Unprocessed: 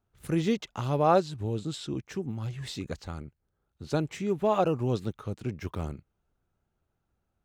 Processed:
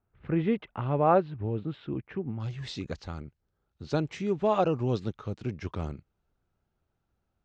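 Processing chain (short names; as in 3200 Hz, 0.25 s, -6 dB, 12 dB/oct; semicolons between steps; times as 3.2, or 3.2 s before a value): LPF 2500 Hz 24 dB/oct, from 2.4 s 6100 Hz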